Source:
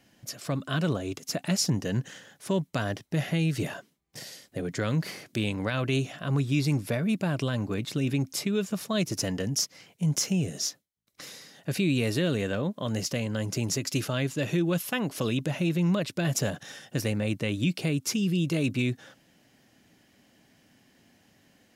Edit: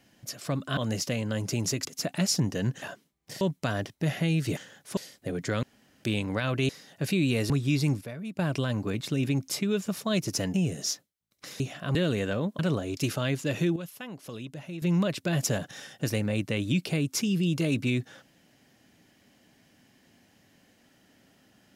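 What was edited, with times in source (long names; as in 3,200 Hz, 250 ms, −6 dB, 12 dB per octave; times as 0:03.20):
0:00.77–0:01.15: swap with 0:12.81–0:13.89
0:02.12–0:02.52: swap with 0:03.68–0:04.27
0:04.93–0:05.34: fill with room tone
0:05.99–0:06.34: swap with 0:11.36–0:12.17
0:06.85–0:07.23: clip gain −10.5 dB
0:09.38–0:10.30: remove
0:14.68–0:15.74: clip gain −11.5 dB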